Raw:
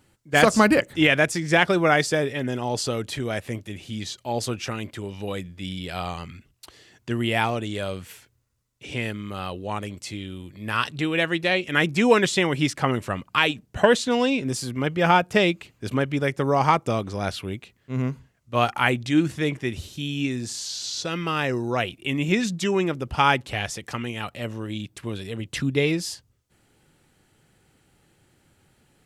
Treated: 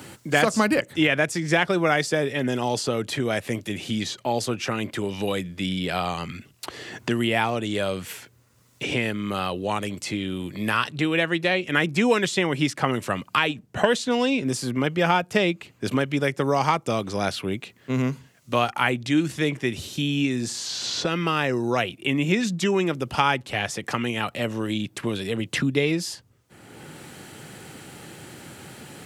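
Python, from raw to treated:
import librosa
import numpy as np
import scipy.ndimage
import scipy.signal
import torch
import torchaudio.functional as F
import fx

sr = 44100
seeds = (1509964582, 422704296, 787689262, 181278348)

y = scipy.signal.sosfilt(scipy.signal.butter(2, 110.0, 'highpass', fs=sr, output='sos'), x)
y = fx.band_squash(y, sr, depth_pct=70)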